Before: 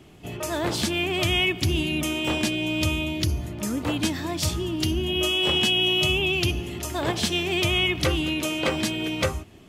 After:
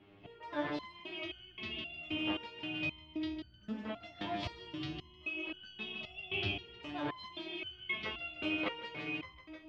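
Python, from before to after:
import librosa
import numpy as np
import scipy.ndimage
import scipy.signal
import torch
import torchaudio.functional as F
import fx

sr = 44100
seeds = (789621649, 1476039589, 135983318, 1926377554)

p1 = scipy.signal.sosfilt(scipy.signal.butter(4, 3400.0, 'lowpass', fs=sr, output='sos'), x)
p2 = fx.low_shelf(p1, sr, hz=180.0, db=-7.5)
p3 = fx.rider(p2, sr, range_db=3, speed_s=0.5)
p4 = p2 + (p3 * 10.0 ** (-2.5 / 20.0))
p5 = fx.echo_feedback(p4, sr, ms=154, feedback_pct=54, wet_db=-7)
p6 = fx.resonator_held(p5, sr, hz=3.8, low_hz=100.0, high_hz=1500.0)
y = p6 * 10.0 ** (-5.0 / 20.0)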